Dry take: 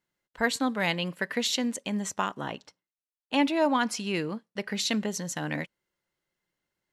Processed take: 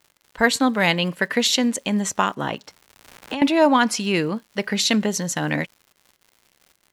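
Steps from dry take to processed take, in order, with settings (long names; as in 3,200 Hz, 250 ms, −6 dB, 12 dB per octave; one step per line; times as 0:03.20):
surface crackle 190 per second −49 dBFS
0:02.53–0:03.42: multiband upward and downward compressor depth 100%
level +8.5 dB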